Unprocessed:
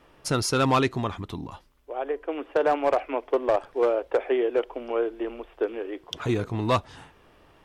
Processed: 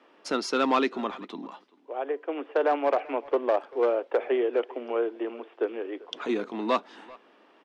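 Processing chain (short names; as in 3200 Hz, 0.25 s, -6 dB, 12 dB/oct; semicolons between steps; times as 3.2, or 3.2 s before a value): steep high-pass 210 Hz 48 dB/oct; speakerphone echo 0.39 s, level -21 dB; in parallel at -12 dB: soft clip -18.5 dBFS, distortion -14 dB; on the sum: LPF 4700 Hz 12 dB/oct; gain -3 dB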